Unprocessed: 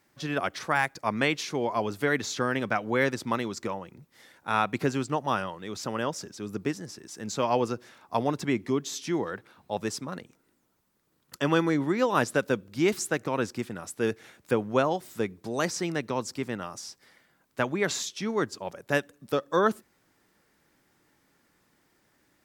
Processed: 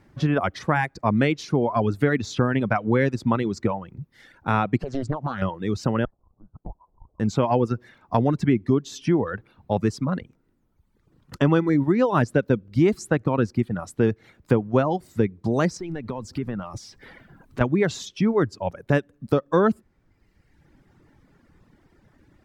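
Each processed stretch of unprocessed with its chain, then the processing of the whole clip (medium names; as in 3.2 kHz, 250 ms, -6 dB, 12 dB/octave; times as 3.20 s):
4.77–5.42 s: low-pass 9.3 kHz + compression 16:1, threshold -30 dBFS + loudspeaker Doppler distortion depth 0.71 ms
6.05–7.20 s: Chebyshev high-pass 2 kHz, order 4 + compression 12:1, threshold -45 dBFS + frequency inversion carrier 2.7 kHz
15.77–17.61 s: companding laws mixed up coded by mu + compression 3:1, threshold -40 dBFS
whole clip: RIAA curve playback; reverb removal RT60 1.1 s; compression 2:1, threshold -28 dBFS; trim +8 dB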